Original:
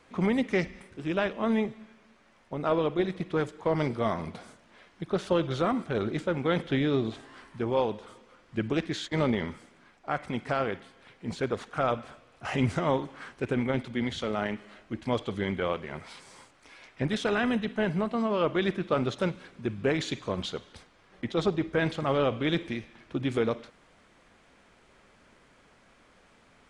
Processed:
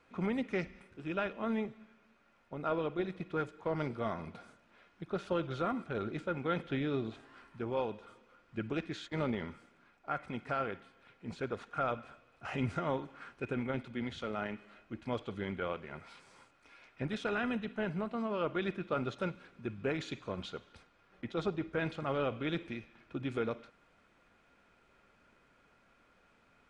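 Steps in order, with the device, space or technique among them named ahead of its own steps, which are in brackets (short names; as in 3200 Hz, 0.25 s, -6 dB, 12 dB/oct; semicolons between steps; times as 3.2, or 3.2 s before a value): inside a helmet (high shelf 5600 Hz -8 dB; small resonant body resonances 1400/2500 Hz, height 11 dB); gain -8 dB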